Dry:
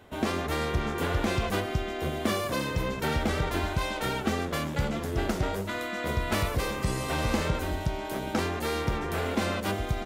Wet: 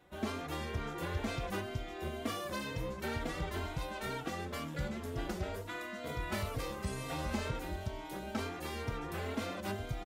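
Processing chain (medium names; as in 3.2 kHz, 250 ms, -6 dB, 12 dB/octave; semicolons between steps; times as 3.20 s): endless flanger 3.7 ms +2.1 Hz; trim -6.5 dB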